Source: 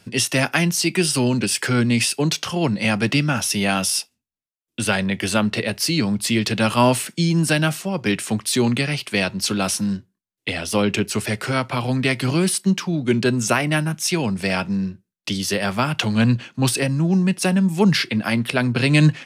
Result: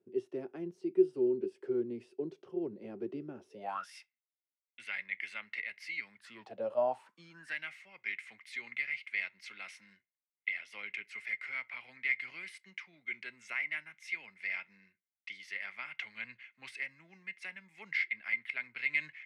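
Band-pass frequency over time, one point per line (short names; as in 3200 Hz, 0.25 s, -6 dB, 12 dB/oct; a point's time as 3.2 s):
band-pass, Q 17
3.48 s 380 Hz
3.93 s 2100 Hz
6.15 s 2100 Hz
6.63 s 490 Hz
7.58 s 2100 Hz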